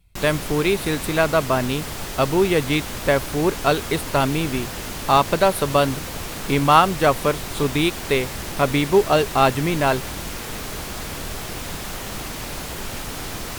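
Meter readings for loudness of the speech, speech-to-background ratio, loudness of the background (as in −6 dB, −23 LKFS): −20.5 LKFS, 9.5 dB, −30.0 LKFS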